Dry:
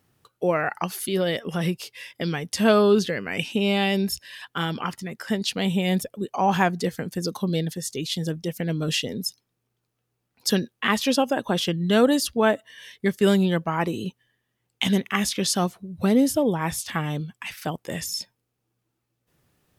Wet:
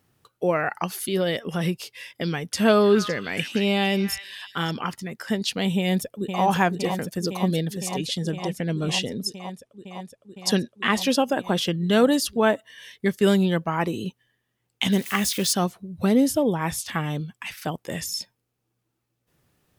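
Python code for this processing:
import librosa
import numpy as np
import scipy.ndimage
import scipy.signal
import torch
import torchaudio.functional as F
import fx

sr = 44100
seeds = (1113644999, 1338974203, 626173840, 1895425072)

y = fx.echo_stepped(x, sr, ms=280, hz=1700.0, octaves=1.4, feedback_pct=70, wet_db=-7.0, at=(2.24, 4.71))
y = fx.echo_throw(y, sr, start_s=5.77, length_s=0.66, ms=510, feedback_pct=85, wet_db=-6.5)
y = fx.lowpass(y, sr, hz=11000.0, slope=24, at=(7.98, 10.97))
y = fx.crossing_spikes(y, sr, level_db=-27.0, at=(14.92, 15.53))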